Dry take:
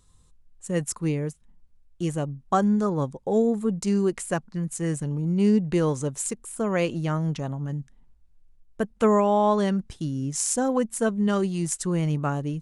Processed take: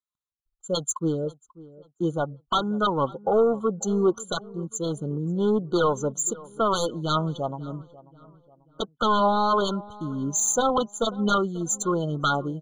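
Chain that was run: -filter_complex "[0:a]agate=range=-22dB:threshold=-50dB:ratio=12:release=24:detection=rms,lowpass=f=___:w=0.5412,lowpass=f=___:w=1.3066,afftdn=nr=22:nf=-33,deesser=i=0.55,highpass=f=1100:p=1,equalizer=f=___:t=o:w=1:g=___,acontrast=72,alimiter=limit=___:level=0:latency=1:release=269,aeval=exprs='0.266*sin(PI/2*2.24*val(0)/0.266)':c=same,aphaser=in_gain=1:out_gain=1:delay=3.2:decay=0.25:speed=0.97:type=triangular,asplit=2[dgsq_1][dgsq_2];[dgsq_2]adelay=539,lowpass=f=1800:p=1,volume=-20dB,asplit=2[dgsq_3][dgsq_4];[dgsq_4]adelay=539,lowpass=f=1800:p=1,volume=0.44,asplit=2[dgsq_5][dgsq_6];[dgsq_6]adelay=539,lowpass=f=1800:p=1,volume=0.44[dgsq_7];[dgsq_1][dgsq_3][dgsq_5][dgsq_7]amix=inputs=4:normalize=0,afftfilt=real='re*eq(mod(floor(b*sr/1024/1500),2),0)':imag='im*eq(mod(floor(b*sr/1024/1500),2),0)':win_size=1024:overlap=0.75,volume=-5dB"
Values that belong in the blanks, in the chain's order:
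8000, 8000, 1800, 13.5, -11.5dB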